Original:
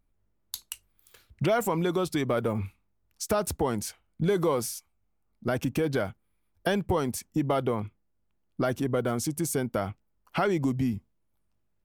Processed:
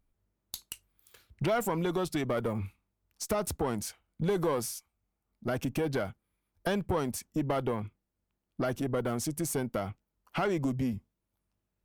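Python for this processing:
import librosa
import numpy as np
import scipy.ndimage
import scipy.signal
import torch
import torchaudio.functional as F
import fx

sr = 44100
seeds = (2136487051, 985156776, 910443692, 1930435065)

y = fx.diode_clip(x, sr, knee_db=-22.0)
y = y * 10.0 ** (-2.0 / 20.0)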